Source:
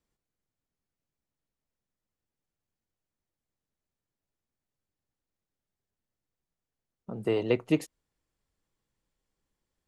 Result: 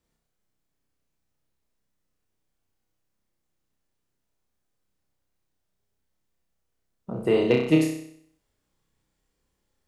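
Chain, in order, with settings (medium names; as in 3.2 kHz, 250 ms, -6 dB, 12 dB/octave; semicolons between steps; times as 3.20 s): hard clipper -13.5 dBFS, distortion -33 dB; flutter echo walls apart 5.4 m, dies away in 0.64 s; trim +4 dB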